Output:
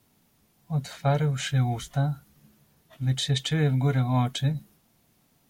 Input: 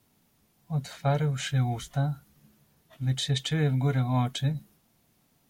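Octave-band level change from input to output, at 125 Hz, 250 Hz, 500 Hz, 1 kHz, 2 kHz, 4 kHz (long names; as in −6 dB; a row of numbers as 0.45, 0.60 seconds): +2.0, +2.0, +2.0, +2.0, +2.0, +2.0 decibels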